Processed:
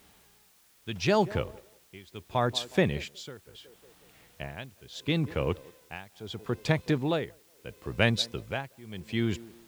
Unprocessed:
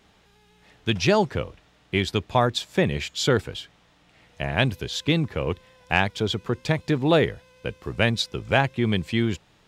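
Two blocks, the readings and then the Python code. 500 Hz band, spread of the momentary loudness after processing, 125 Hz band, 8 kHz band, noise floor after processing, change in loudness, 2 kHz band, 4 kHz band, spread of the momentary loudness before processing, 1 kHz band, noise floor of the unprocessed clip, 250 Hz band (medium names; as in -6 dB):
-6.5 dB, 18 LU, -6.5 dB, -7.5 dB, -62 dBFS, -6.0 dB, -8.0 dB, -7.0 dB, 12 LU, -7.5 dB, -60 dBFS, -6.5 dB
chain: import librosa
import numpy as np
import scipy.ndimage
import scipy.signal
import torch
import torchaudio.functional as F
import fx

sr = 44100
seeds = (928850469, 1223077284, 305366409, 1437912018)

y = fx.echo_banded(x, sr, ms=183, feedback_pct=42, hz=470.0, wet_db=-18)
y = y * (1.0 - 0.94 / 2.0 + 0.94 / 2.0 * np.cos(2.0 * np.pi * 0.74 * (np.arange(len(y)) / sr)))
y = fx.quant_dither(y, sr, seeds[0], bits=10, dither='triangular')
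y = y * 10.0 ** (-2.5 / 20.0)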